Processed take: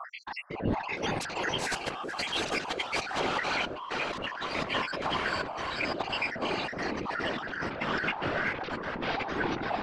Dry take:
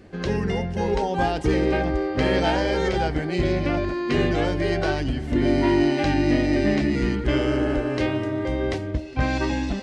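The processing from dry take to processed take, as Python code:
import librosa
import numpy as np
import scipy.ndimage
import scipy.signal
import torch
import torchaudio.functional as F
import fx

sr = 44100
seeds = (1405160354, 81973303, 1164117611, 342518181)

y = fx.spec_dropout(x, sr, seeds[0], share_pct=84)
y = fx.filter_sweep_bandpass(y, sr, from_hz=1100.0, to_hz=340.0, start_s=7.65, end_s=8.95, q=2.8)
y = fx.fold_sine(y, sr, drive_db=18, ceiling_db=-20.5)
y = fx.echo_diffused(y, sr, ms=510, feedback_pct=66, wet_db=-12)
y = fx.over_compress(y, sr, threshold_db=-34.0, ratio=-1.0)
y = fx.peak_eq(y, sr, hz=200.0, db=5.5, octaves=1.4)
y = fx.whisperise(y, sr, seeds[1])
y = fx.high_shelf(y, sr, hz=6100.0, db=11.0, at=(0.98, 3.2))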